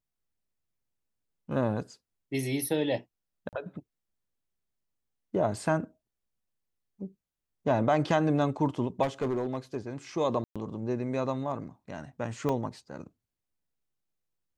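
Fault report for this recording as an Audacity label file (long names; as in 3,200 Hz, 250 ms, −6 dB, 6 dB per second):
3.490000	3.530000	drop-out 38 ms
9.020000	9.770000	clipping −25 dBFS
10.440000	10.560000	drop-out 116 ms
12.490000	12.490000	drop-out 2.9 ms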